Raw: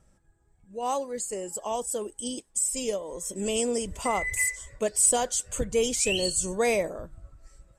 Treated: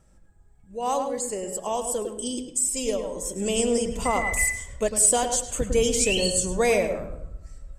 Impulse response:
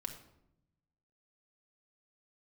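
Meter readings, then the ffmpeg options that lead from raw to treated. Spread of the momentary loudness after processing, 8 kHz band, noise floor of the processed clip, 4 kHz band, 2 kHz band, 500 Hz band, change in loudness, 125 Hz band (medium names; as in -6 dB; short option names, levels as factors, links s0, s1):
11 LU, +2.5 dB, -55 dBFS, +3.0 dB, +3.0 dB, +3.5 dB, +3.0 dB, +6.0 dB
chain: -filter_complex "[0:a]asplit=2[s0][s1];[s1]equalizer=f=12000:w=0.34:g=-11.5[s2];[1:a]atrim=start_sample=2205,lowshelf=f=100:g=11,adelay=104[s3];[s2][s3]afir=irnorm=-1:irlink=0,volume=0.596[s4];[s0][s4]amix=inputs=2:normalize=0,volume=1.33"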